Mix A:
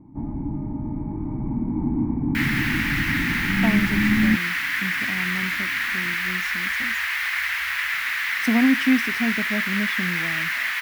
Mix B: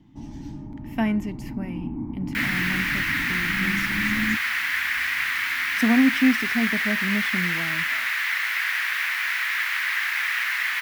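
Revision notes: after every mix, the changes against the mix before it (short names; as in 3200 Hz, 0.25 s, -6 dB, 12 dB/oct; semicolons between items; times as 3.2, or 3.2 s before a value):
speech: entry -2.65 s; first sound -8.0 dB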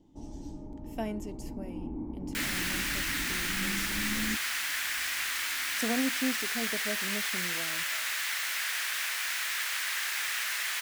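speech -5.5 dB; master: add graphic EQ 125/250/500/1000/2000/8000 Hz -12/-7/+9/-6/-11/+9 dB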